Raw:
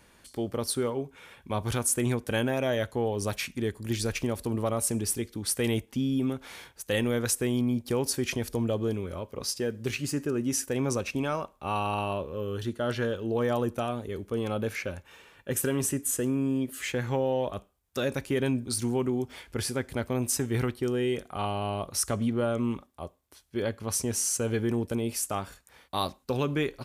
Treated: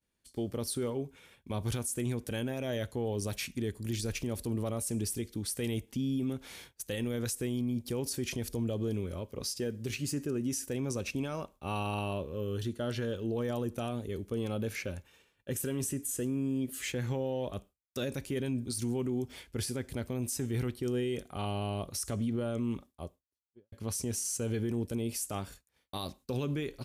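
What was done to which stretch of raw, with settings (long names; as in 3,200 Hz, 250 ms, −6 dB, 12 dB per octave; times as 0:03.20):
0:23.01–0:23.72: fade out and dull
whole clip: downward expander −45 dBFS; parametric band 1,100 Hz −8 dB 2.2 octaves; brickwall limiter −25.5 dBFS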